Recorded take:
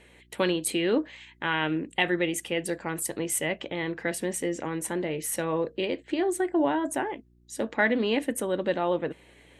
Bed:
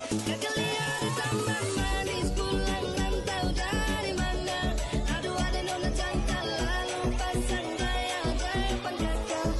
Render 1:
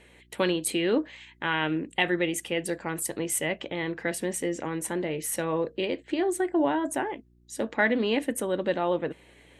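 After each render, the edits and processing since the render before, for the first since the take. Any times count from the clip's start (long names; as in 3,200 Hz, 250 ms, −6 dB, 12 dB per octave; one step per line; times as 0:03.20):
no processing that can be heard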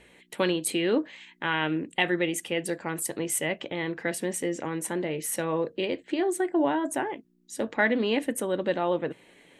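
hum removal 60 Hz, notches 2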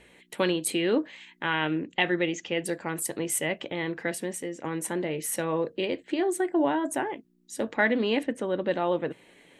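0:01.65–0:02.62: Butterworth low-pass 7,100 Hz 96 dB per octave
0:04.00–0:04.64: fade out, to −8.5 dB
0:08.23–0:08.71: high-frequency loss of the air 130 metres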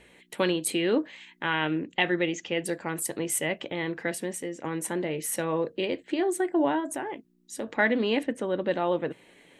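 0:06.80–0:07.75: downward compressor 2 to 1, threshold −31 dBFS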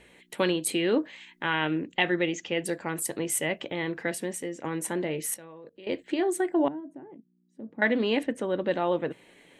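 0:05.34–0:05.87: output level in coarse steps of 23 dB
0:06.68–0:07.82: resonant band-pass 190 Hz, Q 2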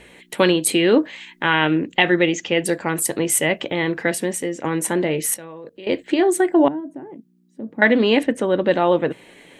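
level +9.5 dB
brickwall limiter −2 dBFS, peak gain reduction 1.5 dB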